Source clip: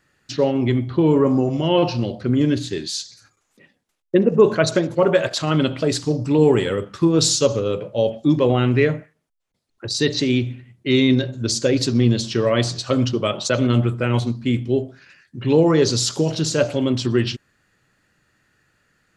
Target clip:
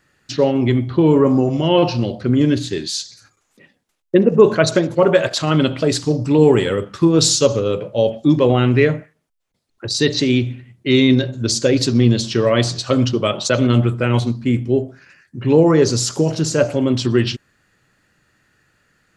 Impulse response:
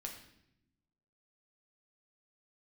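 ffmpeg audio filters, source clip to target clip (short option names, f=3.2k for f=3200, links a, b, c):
-filter_complex "[0:a]asettb=1/sr,asplit=3[a][b][c];[a]atrim=end=14.444[d];[b]atrim=start=14.44:end=16.9,asetpts=PTS-STARTPTS,afade=t=in:d=0.004:c=qsin,afade=t=out:st=2.456:d=0.004:c=qsin,equalizer=f=3.6k:t=o:w=0.76:g=-8.5[e];[c]atrim=start=16.896[f];[d][e]acrossfade=d=0.004:c1=hsin:c2=qsin[g];[g][f]acrossfade=d=0.004:c1=qsin:c2=hsin,volume=3dB"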